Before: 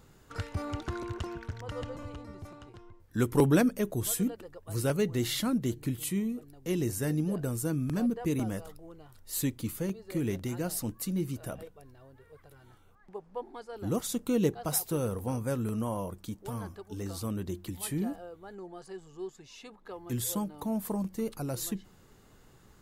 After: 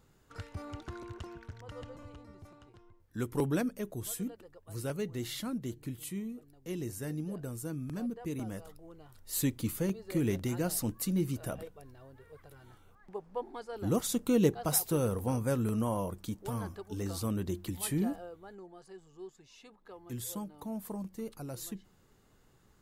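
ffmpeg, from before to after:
-af "volume=1dB,afade=t=in:st=8.35:d=1.3:silence=0.375837,afade=t=out:st=18.08:d=0.62:silence=0.398107"

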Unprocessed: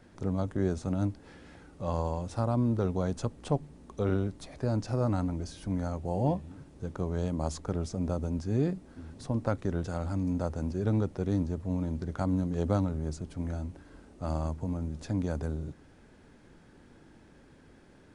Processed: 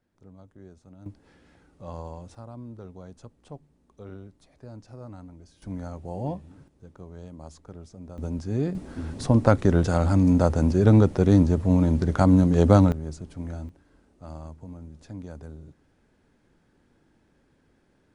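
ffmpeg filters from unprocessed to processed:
-af "asetnsamples=n=441:p=0,asendcmd='1.06 volume volume -6.5dB;2.35 volume volume -13.5dB;5.62 volume volume -3dB;6.68 volume volume -11dB;8.18 volume volume 1.5dB;8.75 volume volume 11.5dB;12.92 volume volume 0dB;13.69 volume volume -8dB',volume=-19dB"

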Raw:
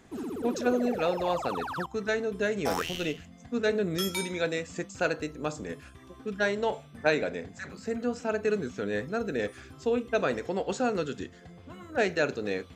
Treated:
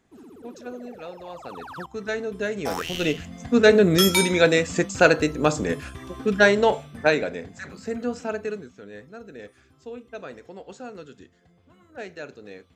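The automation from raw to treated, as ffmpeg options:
-af "volume=12dB,afade=t=in:st=1.32:d=0.87:silence=0.266073,afade=t=in:st=2.82:d=0.54:silence=0.281838,afade=t=out:st=6.31:d=0.97:silence=0.334965,afade=t=out:st=8.2:d=0.5:silence=0.223872"

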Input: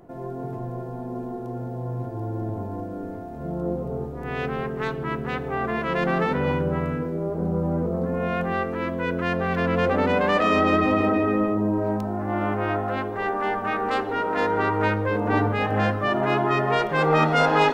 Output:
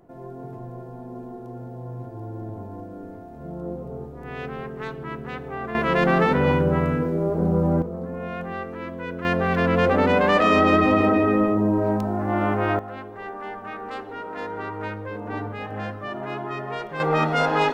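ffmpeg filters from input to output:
-af "asetnsamples=n=441:p=0,asendcmd='5.75 volume volume 4dB;7.82 volume volume -6dB;9.25 volume volume 2.5dB;12.79 volume volume -9dB;17 volume volume -2dB',volume=-5dB"

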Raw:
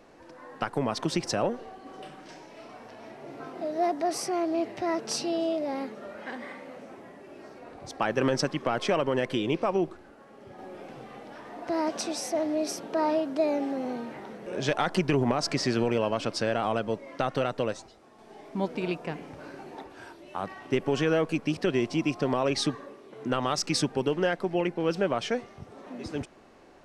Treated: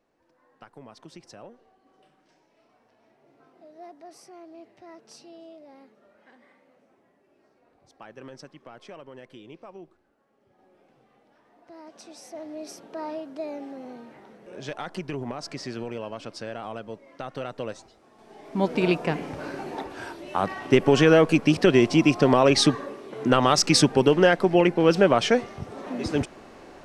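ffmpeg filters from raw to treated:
-af "volume=8.5dB,afade=t=in:st=11.85:d=0.89:silence=0.316228,afade=t=in:st=17.23:d=1.18:silence=0.375837,afade=t=in:st=18.41:d=0.42:silence=0.398107"

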